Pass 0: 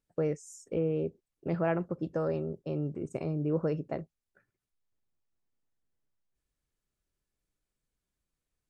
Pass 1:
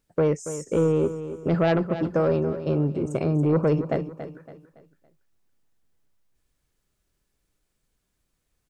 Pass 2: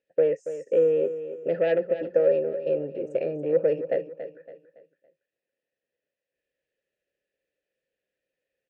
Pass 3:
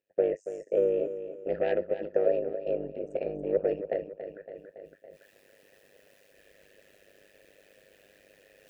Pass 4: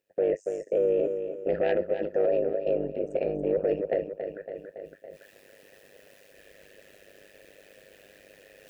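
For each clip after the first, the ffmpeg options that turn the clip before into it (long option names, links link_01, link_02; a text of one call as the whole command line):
ffmpeg -i in.wav -af "aeval=exprs='0.141*sin(PI/2*1.78*val(0)/0.141)':channel_layout=same,aecho=1:1:281|562|843|1124:0.266|0.0984|0.0364|0.0135,volume=1.5dB" out.wav
ffmpeg -i in.wav -filter_complex "[0:a]asplit=3[link_01][link_02][link_03];[link_01]bandpass=frequency=530:width_type=q:width=8,volume=0dB[link_04];[link_02]bandpass=frequency=1840:width_type=q:width=8,volume=-6dB[link_05];[link_03]bandpass=frequency=2480:width_type=q:width=8,volume=-9dB[link_06];[link_04][link_05][link_06]amix=inputs=3:normalize=0,volume=8dB" out.wav
ffmpeg -i in.wav -af "areverse,acompressor=mode=upward:threshold=-30dB:ratio=2.5,areverse,tremolo=f=100:d=0.857,volume=-1dB" out.wav
ffmpeg -i in.wav -af "alimiter=limit=-22dB:level=0:latency=1:release=13,volume=5.5dB" out.wav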